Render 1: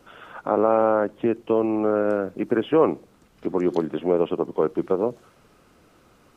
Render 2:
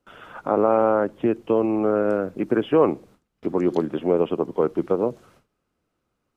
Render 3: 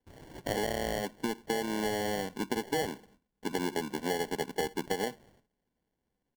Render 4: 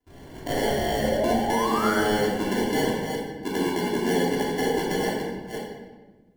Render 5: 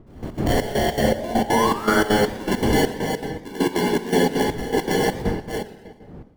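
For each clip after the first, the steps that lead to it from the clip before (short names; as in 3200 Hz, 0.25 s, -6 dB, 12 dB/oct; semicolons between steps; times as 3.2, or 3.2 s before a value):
gate with hold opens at -43 dBFS; low shelf 200 Hz +3.5 dB
comb 4.4 ms, depth 40%; sample-and-hold 35×; compressor 10:1, threshold -20 dBFS, peak gain reduction 11 dB; gain -7.5 dB
reverse delay 0.294 s, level -6 dB; painted sound rise, 0.99–1.99, 490–1600 Hz -34 dBFS; shoebox room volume 870 m³, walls mixed, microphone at 3.1 m
wind noise 260 Hz -34 dBFS; step gate "...x.xxx..xx.xx" 200 bpm -12 dB; warbling echo 0.121 s, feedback 54%, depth 214 cents, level -19 dB; gain +5.5 dB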